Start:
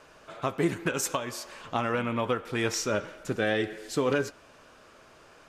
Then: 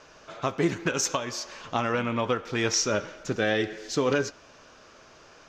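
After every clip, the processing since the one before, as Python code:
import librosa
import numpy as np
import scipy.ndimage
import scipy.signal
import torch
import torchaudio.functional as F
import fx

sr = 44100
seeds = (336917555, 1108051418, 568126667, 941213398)

y = fx.high_shelf_res(x, sr, hz=7700.0, db=-9.0, q=3.0)
y = F.gain(torch.from_numpy(y), 1.5).numpy()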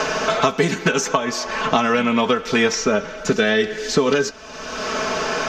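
y = x + 0.71 * np.pad(x, (int(4.6 * sr / 1000.0), 0))[:len(x)]
y = fx.band_squash(y, sr, depth_pct=100)
y = F.gain(torch.from_numpy(y), 6.5).numpy()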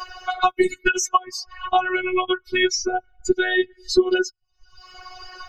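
y = fx.bin_expand(x, sr, power=3.0)
y = fx.robotise(y, sr, hz=366.0)
y = F.gain(torch.from_numpy(y), 7.0).numpy()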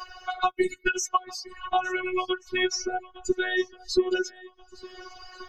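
y = fx.echo_swing(x, sr, ms=1431, ratio=1.5, feedback_pct=33, wet_db=-21.5)
y = F.gain(torch.from_numpy(y), -6.0).numpy()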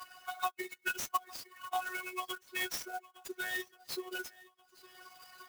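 y = scipy.signal.sosfilt(scipy.signal.butter(2, 690.0, 'highpass', fs=sr, output='sos'), x)
y = fx.clock_jitter(y, sr, seeds[0], jitter_ms=0.029)
y = F.gain(torch.from_numpy(y), -8.0).numpy()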